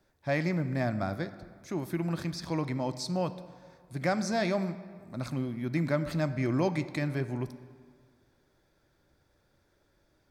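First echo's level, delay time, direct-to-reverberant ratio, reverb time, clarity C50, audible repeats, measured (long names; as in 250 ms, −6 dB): no echo audible, no echo audible, 11.5 dB, 1.9 s, 13.0 dB, no echo audible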